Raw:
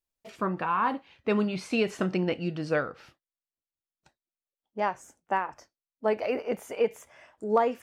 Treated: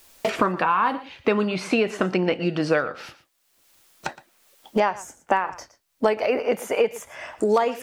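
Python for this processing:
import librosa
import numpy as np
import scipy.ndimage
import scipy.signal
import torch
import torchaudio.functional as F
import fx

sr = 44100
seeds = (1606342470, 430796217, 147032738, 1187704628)

y = fx.low_shelf(x, sr, hz=230.0, db=-10.0)
y = y + 10.0 ** (-19.5 / 20.0) * np.pad(y, (int(116 * sr / 1000.0), 0))[:len(y)]
y = fx.band_squash(y, sr, depth_pct=100)
y = F.gain(torch.from_numpy(y), 7.5).numpy()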